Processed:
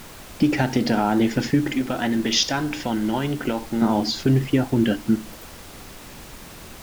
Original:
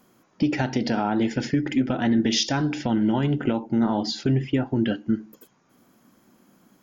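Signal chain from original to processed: 1.72–3.82 low shelf 330 Hz -9 dB; added noise pink -44 dBFS; gain +3.5 dB

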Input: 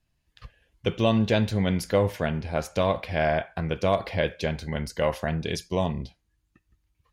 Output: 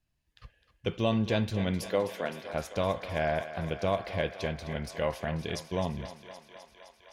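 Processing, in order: 1.87–2.53 HPF 190 Hz -> 400 Hz 12 dB/oct; thinning echo 0.258 s, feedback 79%, high-pass 330 Hz, level -12 dB; gain -5.5 dB

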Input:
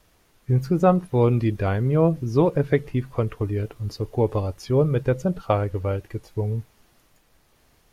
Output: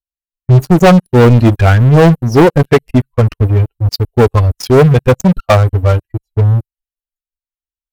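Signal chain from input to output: per-bin expansion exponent 2; sample leveller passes 5; mismatched tape noise reduction decoder only; gain +4.5 dB

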